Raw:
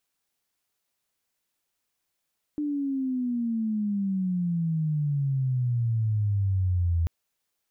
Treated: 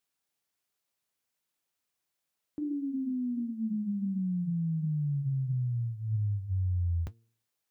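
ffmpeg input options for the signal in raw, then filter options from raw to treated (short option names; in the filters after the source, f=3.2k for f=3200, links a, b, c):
-f lavfi -i "aevalsrc='pow(10,(-25.5+4.5*t/4.49)/20)*sin(2*PI*300*4.49/log(82/300)*(exp(log(82/300)*t/4.49)-1))':d=4.49:s=44100"
-af "highpass=55,bandreject=f=114.3:t=h:w=4,bandreject=f=228.6:t=h:w=4,bandreject=f=342.9:t=h:w=4,bandreject=f=457.2:t=h:w=4,flanger=delay=4.9:depth=8.3:regen=-71:speed=1.4:shape=sinusoidal"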